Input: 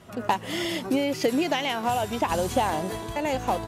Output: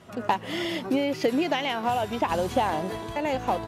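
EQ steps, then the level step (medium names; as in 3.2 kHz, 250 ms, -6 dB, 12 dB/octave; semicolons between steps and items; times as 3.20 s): dynamic bell 7.8 kHz, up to -6 dB, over -50 dBFS, Q 1; bass shelf 69 Hz -7 dB; treble shelf 11 kHz -9 dB; 0.0 dB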